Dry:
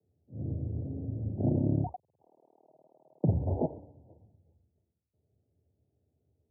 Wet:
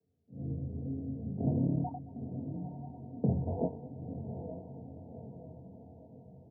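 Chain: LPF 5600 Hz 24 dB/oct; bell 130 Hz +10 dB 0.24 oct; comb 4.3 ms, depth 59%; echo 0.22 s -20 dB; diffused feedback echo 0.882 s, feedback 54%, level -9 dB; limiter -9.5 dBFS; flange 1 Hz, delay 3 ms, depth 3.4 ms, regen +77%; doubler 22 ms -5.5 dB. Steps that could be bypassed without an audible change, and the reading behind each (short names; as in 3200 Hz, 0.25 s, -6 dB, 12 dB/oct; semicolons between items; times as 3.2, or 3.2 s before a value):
LPF 5600 Hz: input band ends at 910 Hz; limiter -9.5 dBFS: input peak -13.0 dBFS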